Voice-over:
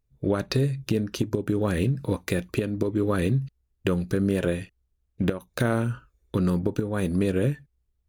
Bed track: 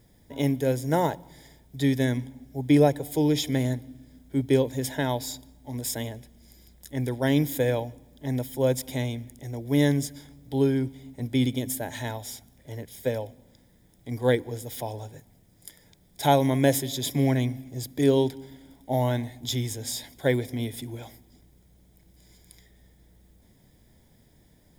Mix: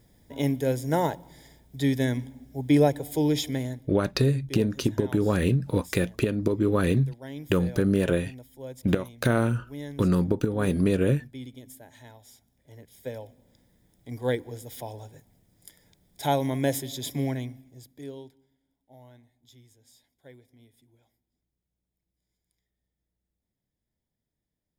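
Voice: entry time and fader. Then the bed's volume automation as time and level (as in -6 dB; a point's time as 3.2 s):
3.65 s, +1.0 dB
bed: 3.39 s -1 dB
4.24 s -16.5 dB
12.13 s -16.5 dB
13.58 s -4.5 dB
17.19 s -4.5 dB
18.57 s -27 dB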